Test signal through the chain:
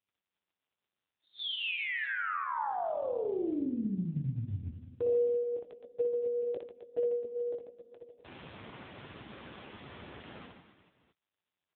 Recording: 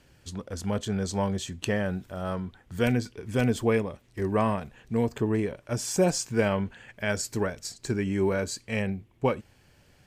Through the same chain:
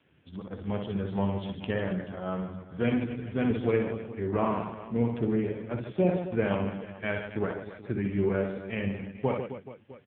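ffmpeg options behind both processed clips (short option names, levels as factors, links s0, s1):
-filter_complex "[0:a]asplit=2[s0][s1];[s1]aecho=0:1:60|144|261.6|426.2|656.7:0.631|0.398|0.251|0.158|0.1[s2];[s0][s2]amix=inputs=2:normalize=0,volume=0.75" -ar 8000 -c:a libopencore_amrnb -b:a 5900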